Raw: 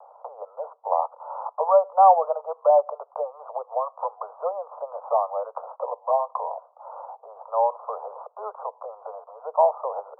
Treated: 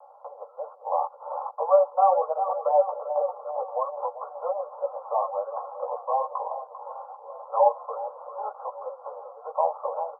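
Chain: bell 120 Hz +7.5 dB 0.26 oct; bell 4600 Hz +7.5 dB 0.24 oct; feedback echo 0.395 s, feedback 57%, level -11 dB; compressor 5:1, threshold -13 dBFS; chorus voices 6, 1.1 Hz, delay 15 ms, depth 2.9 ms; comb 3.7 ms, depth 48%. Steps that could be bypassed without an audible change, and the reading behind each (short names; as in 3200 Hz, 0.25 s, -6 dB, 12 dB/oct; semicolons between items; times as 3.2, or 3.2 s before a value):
bell 120 Hz: input band starts at 400 Hz; bell 4600 Hz: input band ends at 1400 Hz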